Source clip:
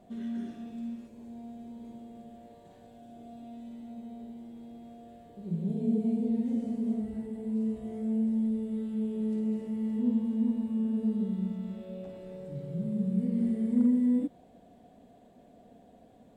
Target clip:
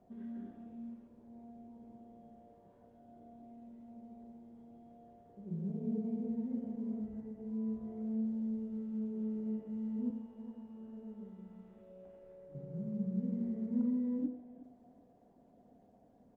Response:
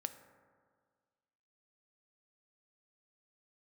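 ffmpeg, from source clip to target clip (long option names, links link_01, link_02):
-filter_complex "[0:a]lowpass=1500,asettb=1/sr,asplit=3[link_01][link_02][link_03];[link_01]atrim=end=10.104[link_04];[link_02]atrim=start=10.1:end=12.55,asetpts=PTS-STARTPTS,afade=type=in:duration=0.004:curve=qsin,afade=type=out:start_time=2.446:duration=0.004:curve=qsin,equalizer=frequency=180:width=0.63:gain=-12.5[link_05];[link_03]atrim=start=12.546[link_06];[link_04][link_05]acrossfade=duration=0.004:curve1=hsin:curve2=qsin[link_07];[link_07][link_06]acrossfade=duration=0.004:curve1=qsin:curve2=hsin,aecho=1:1:369|738|1107:0.106|0.0339|0.0108[link_08];[1:a]atrim=start_sample=2205,afade=type=out:start_time=0.32:duration=0.01,atrim=end_sample=14553,asetrate=79380,aresample=44100[link_09];[link_08][link_09]afir=irnorm=-1:irlink=0" -ar 48000 -c:a libopus -b:a 32k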